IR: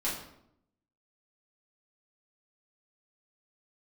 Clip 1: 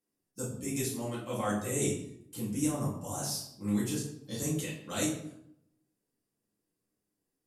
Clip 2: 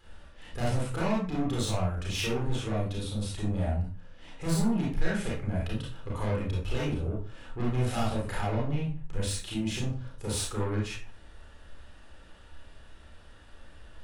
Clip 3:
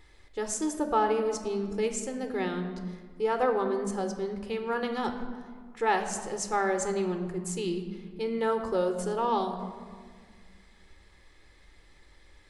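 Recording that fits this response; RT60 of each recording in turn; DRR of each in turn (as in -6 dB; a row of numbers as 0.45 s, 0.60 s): 1; 0.75 s, 0.40 s, 1.9 s; -8.5 dB, -5.0 dB, 6.5 dB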